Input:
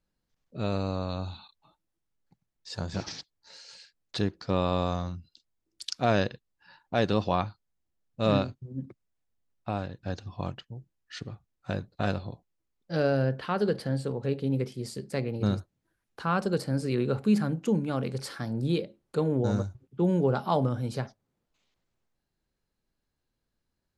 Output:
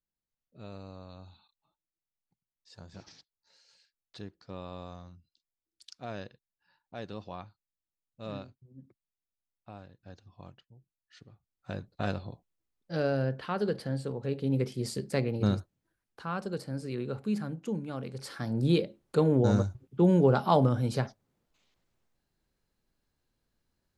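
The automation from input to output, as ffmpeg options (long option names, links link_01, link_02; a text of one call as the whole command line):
ffmpeg -i in.wav -af "volume=13dB,afade=type=in:start_time=11.33:duration=0.61:silence=0.251189,afade=type=in:start_time=14.3:duration=0.59:silence=0.473151,afade=type=out:start_time=14.89:duration=1.37:silence=0.298538,afade=type=in:start_time=18.15:duration=0.54:silence=0.316228" out.wav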